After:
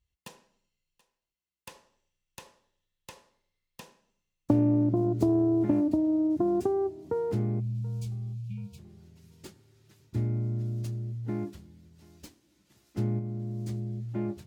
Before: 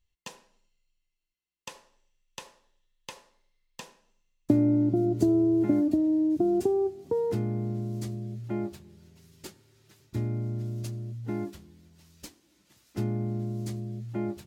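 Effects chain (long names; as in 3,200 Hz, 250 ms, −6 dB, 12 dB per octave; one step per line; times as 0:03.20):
phase distortion by the signal itself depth 0.44 ms
high-pass filter 45 Hz
low-shelf EQ 260 Hz +7 dB
0:07.60–0:08.78: time-frequency box erased 200–2,200 Hz
0:13.19–0:13.69: output level in coarse steps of 10 dB
on a send: feedback echo with a high-pass in the loop 731 ms, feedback 43%, high-pass 540 Hz, level −20.5 dB
on the sum: level −4 dB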